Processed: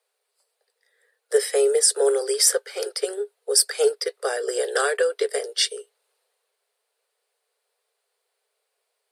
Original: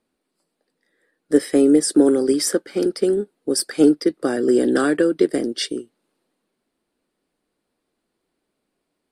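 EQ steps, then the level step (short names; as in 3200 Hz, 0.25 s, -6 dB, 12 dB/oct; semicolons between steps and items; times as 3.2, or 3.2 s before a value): Chebyshev high-pass 410 Hz, order 8; high shelf 3600 Hz +7.5 dB; 0.0 dB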